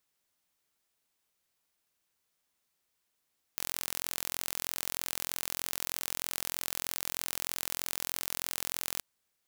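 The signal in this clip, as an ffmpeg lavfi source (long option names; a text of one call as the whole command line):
ffmpeg -f lavfi -i "aevalsrc='0.447*eq(mod(n,1021),0)':duration=5.42:sample_rate=44100" out.wav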